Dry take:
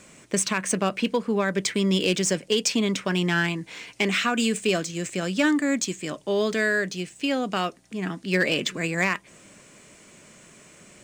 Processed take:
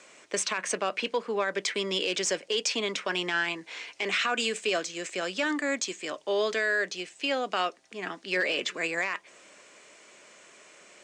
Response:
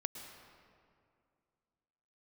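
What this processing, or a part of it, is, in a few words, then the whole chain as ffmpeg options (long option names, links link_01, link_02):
DJ mixer with the lows and highs turned down: -filter_complex "[0:a]acrossover=split=360 7600:gain=0.0708 1 0.1[link_01][link_02][link_03];[link_01][link_02][link_03]amix=inputs=3:normalize=0,alimiter=limit=-18dB:level=0:latency=1:release=19"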